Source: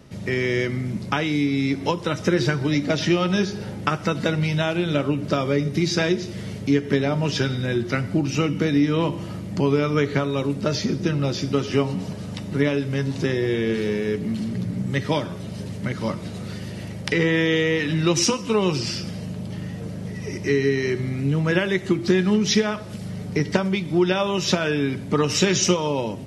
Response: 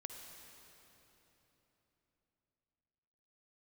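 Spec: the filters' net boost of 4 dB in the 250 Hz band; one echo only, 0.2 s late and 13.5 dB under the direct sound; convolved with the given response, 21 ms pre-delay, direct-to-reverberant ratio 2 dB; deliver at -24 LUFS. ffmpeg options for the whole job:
-filter_complex "[0:a]equalizer=f=250:t=o:g=5.5,aecho=1:1:200:0.211,asplit=2[a][b];[1:a]atrim=start_sample=2205,adelay=21[c];[b][c]afir=irnorm=-1:irlink=0,volume=1.5dB[d];[a][d]amix=inputs=2:normalize=0,volume=-6dB"

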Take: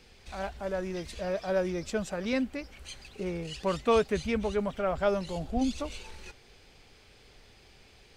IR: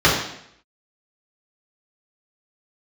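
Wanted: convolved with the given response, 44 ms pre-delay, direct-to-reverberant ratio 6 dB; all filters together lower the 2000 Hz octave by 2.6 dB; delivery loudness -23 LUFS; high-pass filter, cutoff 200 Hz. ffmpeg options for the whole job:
-filter_complex "[0:a]highpass=200,equalizer=f=2k:t=o:g=-3.5,asplit=2[a][b];[1:a]atrim=start_sample=2205,adelay=44[c];[b][c]afir=irnorm=-1:irlink=0,volume=-30dB[d];[a][d]amix=inputs=2:normalize=0,volume=8dB"

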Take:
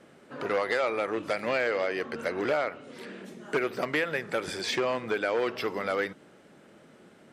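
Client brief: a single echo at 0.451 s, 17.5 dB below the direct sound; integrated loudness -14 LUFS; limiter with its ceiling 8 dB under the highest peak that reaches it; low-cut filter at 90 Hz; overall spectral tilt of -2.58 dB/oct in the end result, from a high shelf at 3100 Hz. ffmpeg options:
-af "highpass=90,highshelf=f=3.1k:g=-4.5,alimiter=limit=-23.5dB:level=0:latency=1,aecho=1:1:451:0.133,volume=20dB"

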